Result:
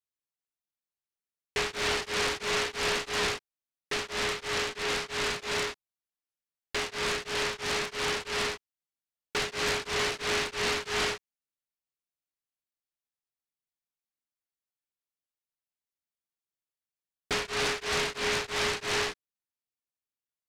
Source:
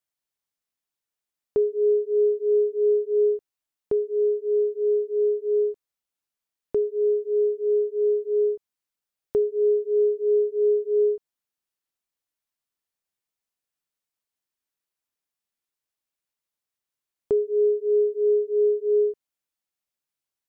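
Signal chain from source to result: delay time shaken by noise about 1.8 kHz, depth 0.48 ms; trim -9 dB

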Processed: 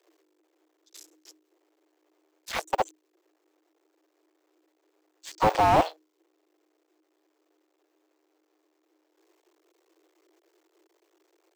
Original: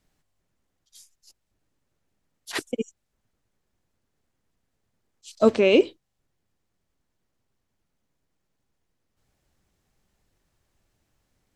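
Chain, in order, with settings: cycle switcher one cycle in 2, muted; frequency shift +310 Hz; peaking EQ 9.7 kHz -13 dB 0.22 oct; slew-rate limiter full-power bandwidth 55 Hz; trim +6.5 dB

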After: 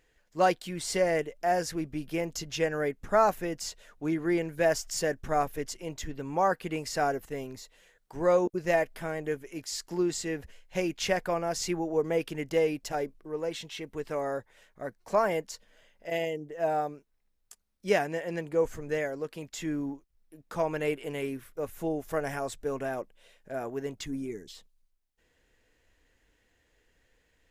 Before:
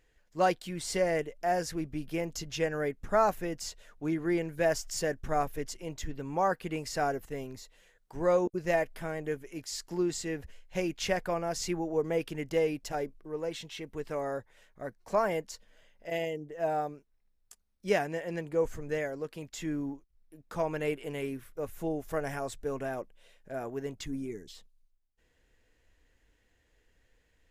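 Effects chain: bass shelf 120 Hz -5.5 dB; trim +2.5 dB

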